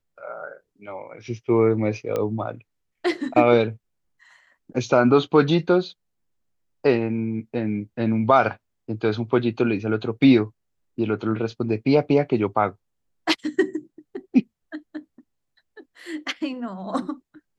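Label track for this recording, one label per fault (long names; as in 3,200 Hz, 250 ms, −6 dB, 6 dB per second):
2.160000	2.160000	click −13 dBFS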